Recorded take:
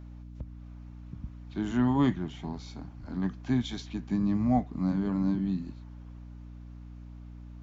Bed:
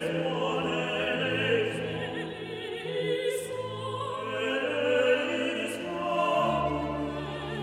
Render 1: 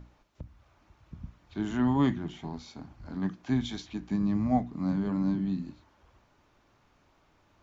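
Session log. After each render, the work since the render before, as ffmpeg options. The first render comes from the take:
-af "bandreject=f=60:t=h:w=6,bandreject=f=120:t=h:w=6,bandreject=f=180:t=h:w=6,bandreject=f=240:t=h:w=6,bandreject=f=300:t=h:w=6,bandreject=f=360:t=h:w=6"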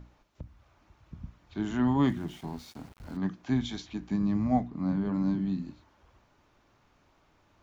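-filter_complex "[0:a]asettb=1/sr,asplit=3[a][b][c];[a]atrim=end=2.054[d];[b]atrim=start=2.05:end=3.17,asetpts=PTS-STARTPTS,afade=t=in:d=0.004:c=qsin,afade=t=out:st=1.116:d=0.004:c=qsin,aeval=exprs='val(0)*gte(abs(val(0)),0.00316)':c=same[e];[c]atrim=start=3.166[f];[d][e]acrossfade=d=0.004:c1=hsin:c2=qsin[g];[g][f]acrossfade=d=0.004:c1=qsin:c2=hsin,asettb=1/sr,asplit=3[h][i][j];[h]atrim=end=4.674[k];[i]atrim=start=4.67:end=5.14,asetpts=PTS-STARTPTS,afade=t=in:d=0.004:c=qsin,afade=t=out:st=0.466:d=0.004:c=qsin,highshelf=f=5.9k:g=-12[l];[j]atrim=start=5.136[m];[k][l]acrossfade=d=0.004:c1=hsin:c2=qsin[n];[n][m]acrossfade=d=0.004:c1=qsin:c2=hsin"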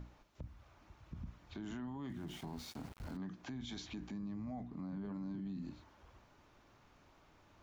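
-af "acompressor=threshold=-35dB:ratio=4,alimiter=level_in=13dB:limit=-24dB:level=0:latency=1:release=35,volume=-13dB"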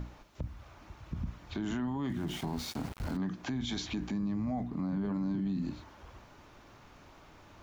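-af "volume=10dB"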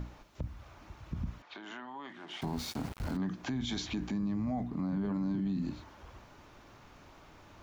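-filter_complex "[0:a]asettb=1/sr,asplit=3[a][b][c];[a]atrim=end=1.424[d];[b]atrim=start=1.42:end=2.42,asetpts=PTS-STARTPTS,afade=t=in:d=0.004:c=qsin,afade=t=out:st=0.996:d=0.004:c=qsin,highpass=650,lowpass=4k[e];[c]atrim=start=2.416[f];[d][e]acrossfade=d=0.004:c1=hsin:c2=qsin[g];[g][f]acrossfade=d=0.004:c1=qsin:c2=hsin"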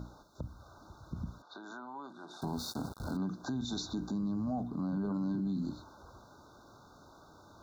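-af "afftfilt=real='re*(1-between(b*sr/4096,1600,3500))':imag='im*(1-between(b*sr/4096,1600,3500))':win_size=4096:overlap=0.75,highpass=f=100:p=1"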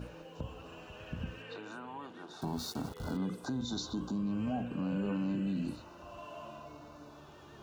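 -filter_complex "[1:a]volume=-21.5dB[a];[0:a][a]amix=inputs=2:normalize=0"

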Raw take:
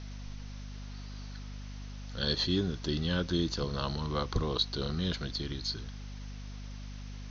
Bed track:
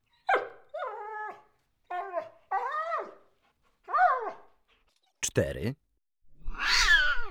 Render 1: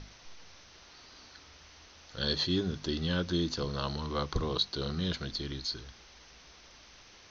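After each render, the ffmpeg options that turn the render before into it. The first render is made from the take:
-af "bandreject=f=50:t=h:w=6,bandreject=f=100:t=h:w=6,bandreject=f=150:t=h:w=6,bandreject=f=200:t=h:w=6,bandreject=f=250:t=h:w=6"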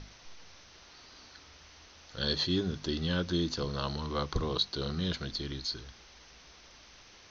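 -af anull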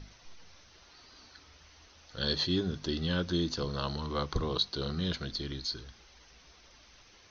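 -af "afftdn=nr=6:nf=-56"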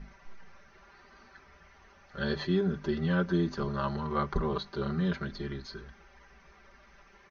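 -af "highshelf=f=2.6k:t=q:w=1.5:g=-12,aecho=1:1:5.1:0.93"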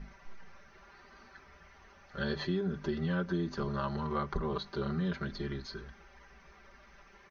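-af "acompressor=threshold=-31dB:ratio=2.5"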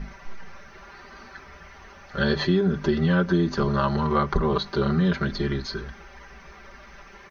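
-af "volume=11.5dB"

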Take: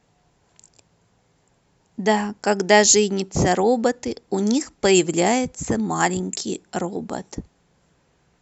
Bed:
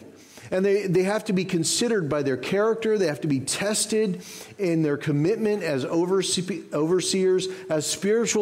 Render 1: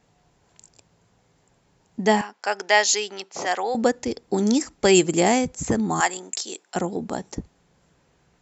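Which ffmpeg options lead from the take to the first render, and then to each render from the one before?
-filter_complex "[0:a]asettb=1/sr,asplit=3[a][b][c];[a]atrim=end=2.214[d];[b]atrim=start=2.21:end=3.75,asetpts=PTS-STARTPTS,afade=t=in:d=0.004:c=qsin,afade=t=out:st=1.536:d=0.004:c=qsin,highpass=770,lowpass=5.1k[e];[c]atrim=start=3.746[f];[d][e]acrossfade=d=0.004:c1=hsin:c2=qsin[g];[g][f]acrossfade=d=0.004:c1=qsin:c2=hsin,asettb=1/sr,asplit=3[h][i][j];[h]atrim=end=6.004[k];[i]atrim=start=6:end=6.76,asetpts=PTS-STARTPTS,afade=t=in:d=0.004:c=qsin,afade=t=out:st=0.756:d=0.004:c=qsin,highpass=640[l];[j]atrim=start=6.756[m];[k][l]acrossfade=d=0.004:c1=hsin:c2=qsin[n];[n][m]acrossfade=d=0.004:c1=qsin:c2=hsin"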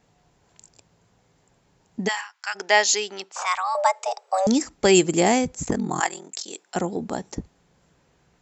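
-filter_complex "[0:a]asplit=3[a][b][c];[a]afade=t=out:st=2.07:d=0.02[d];[b]highpass=f=1.1k:w=0.5412,highpass=f=1.1k:w=1.3066,afade=t=in:st=2.07:d=0.02,afade=t=out:st=2.54:d=0.02[e];[c]afade=t=in:st=2.54:d=0.02[f];[d][e][f]amix=inputs=3:normalize=0,asettb=1/sr,asplit=3[g][h][i];[g]atrim=end=3.324[j];[h]atrim=start=3.32:end=4.47,asetpts=PTS-STARTPTS,afade=t=in:d=0.004:c=qsin,afade=t=out:st=1.146:d=0.004:c=qsin,afreqshift=370[k];[i]atrim=start=4.466[l];[j][k]acrossfade=d=0.004:c1=hsin:c2=qsin[m];[m][l]acrossfade=d=0.004:c1=qsin:c2=hsin,asplit=3[n][o][p];[n]afade=t=out:st=5.64:d=0.02[q];[o]aeval=exprs='val(0)*sin(2*PI*21*n/s)':c=same,afade=t=in:st=5.64:d=0.02,afade=t=out:st=6.52:d=0.02[r];[p]afade=t=in:st=6.52:d=0.02[s];[q][r][s]amix=inputs=3:normalize=0"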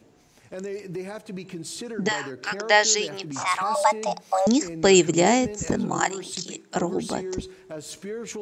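-filter_complex "[1:a]volume=-12dB[a];[0:a][a]amix=inputs=2:normalize=0"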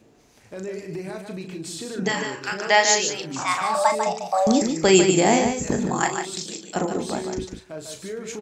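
-filter_complex "[0:a]asplit=2[a][b];[b]adelay=37,volume=-7.5dB[c];[a][c]amix=inputs=2:normalize=0,asplit=2[d][e];[e]aecho=0:1:148:0.473[f];[d][f]amix=inputs=2:normalize=0"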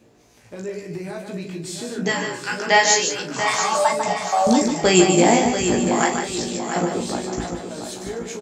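-filter_complex "[0:a]asplit=2[a][b];[b]adelay=17,volume=-3dB[c];[a][c]amix=inputs=2:normalize=0,aecho=1:1:686|1372|2058|2744:0.376|0.15|0.0601|0.0241"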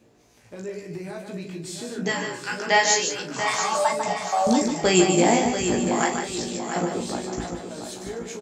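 -af "volume=-3.5dB"

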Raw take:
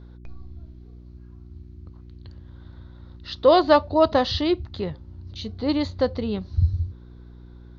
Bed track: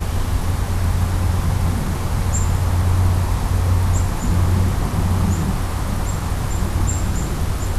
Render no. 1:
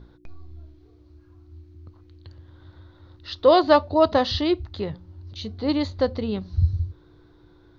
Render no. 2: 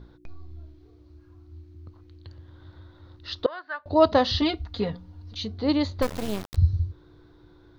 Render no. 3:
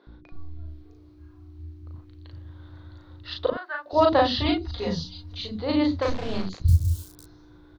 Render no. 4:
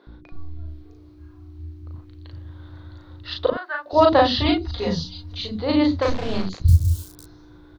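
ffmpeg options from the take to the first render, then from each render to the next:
-af "bandreject=f=60:t=h:w=4,bandreject=f=120:t=h:w=4,bandreject=f=180:t=h:w=4,bandreject=f=240:t=h:w=4"
-filter_complex "[0:a]asettb=1/sr,asplit=3[a][b][c];[a]atrim=end=3.464[d];[b]atrim=start=3.46:end=3.86,asetpts=PTS-STARTPTS,afade=t=in:d=0.004:c=qsin,afade=t=out:st=0.396:d=0.004:c=qsin,bandpass=f=1.6k:t=q:w=8.9[e];[c]atrim=start=3.856[f];[d][e]acrossfade=d=0.004:c1=hsin:c2=qsin[g];[g][f]acrossfade=d=0.004:c1=qsin:c2=hsin,asettb=1/sr,asplit=3[h][i][j];[h]atrim=end=4.414[k];[i]atrim=start=4.41:end=5.45,asetpts=PTS-STARTPTS,afade=t=in:d=0.004:c=qsin,afade=t=out:st=1.036:d=0.004:c=qsin,aecho=1:1:4.2:0.89,atrim=end_sample=45864[l];[j]atrim=start=5.446[m];[k][l]acrossfade=d=0.004:c1=hsin:c2=qsin[n];[n][m]acrossfade=d=0.004:c1=qsin:c2=hsin,asettb=1/sr,asplit=3[o][p][q];[o]atrim=end=6.024[r];[p]atrim=start=6.02:end=6.56,asetpts=PTS-STARTPTS,afade=t=in:d=0.004:c=qsin,afade=t=out:st=0.536:d=0.004:c=qsin,acrusher=bits=3:dc=4:mix=0:aa=0.000001[s];[q]atrim=start=6.556[t];[r][s]acrossfade=d=0.004:c1=hsin:c2=qsin[u];[u][t]acrossfade=d=0.004:c1=qsin:c2=hsin"
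-filter_complex "[0:a]asplit=2[a][b];[b]adelay=37,volume=-2dB[c];[a][c]amix=inputs=2:normalize=0,acrossover=split=340|5200[d][e][f];[d]adelay=70[g];[f]adelay=660[h];[g][e][h]amix=inputs=3:normalize=0"
-af "volume=4dB"

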